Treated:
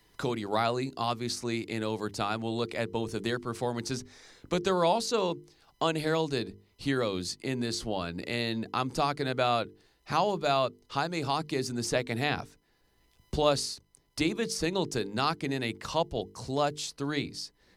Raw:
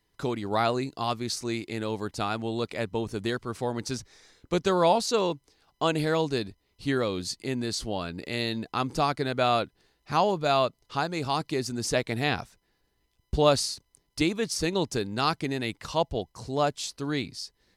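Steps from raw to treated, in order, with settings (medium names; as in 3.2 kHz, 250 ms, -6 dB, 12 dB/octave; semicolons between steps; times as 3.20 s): hum notches 50/100/150/200/250/300/350/400/450 Hz; three bands compressed up and down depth 40%; trim -2 dB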